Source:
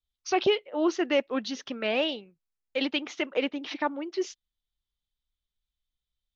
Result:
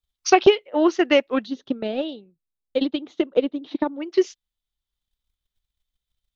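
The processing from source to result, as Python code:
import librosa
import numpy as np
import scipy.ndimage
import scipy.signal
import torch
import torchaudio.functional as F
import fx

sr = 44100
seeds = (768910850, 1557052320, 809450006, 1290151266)

y = fx.curve_eq(x, sr, hz=(330.0, 2400.0, 3800.0, 5500.0, 8200.0), db=(0, -18, -4, -17, -10), at=(1.45, 3.99), fade=0.02)
y = fx.transient(y, sr, attack_db=10, sustain_db=-2)
y = y * 10.0 ** (3.0 / 20.0)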